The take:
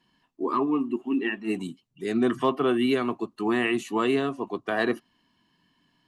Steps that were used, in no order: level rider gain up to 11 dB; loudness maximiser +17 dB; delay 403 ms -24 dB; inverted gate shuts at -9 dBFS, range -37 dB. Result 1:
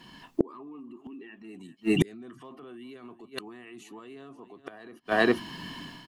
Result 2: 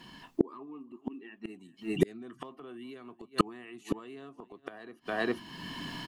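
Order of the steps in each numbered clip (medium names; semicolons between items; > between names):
level rider > delay > loudness maximiser > inverted gate; delay > loudness maximiser > level rider > inverted gate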